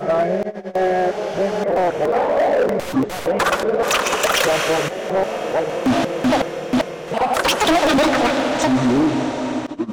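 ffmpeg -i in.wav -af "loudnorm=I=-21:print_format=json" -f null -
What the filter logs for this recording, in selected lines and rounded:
"input_i" : "-18.5",
"input_tp" : "-10.3",
"input_lra" : "1.6",
"input_thresh" : "-28.5",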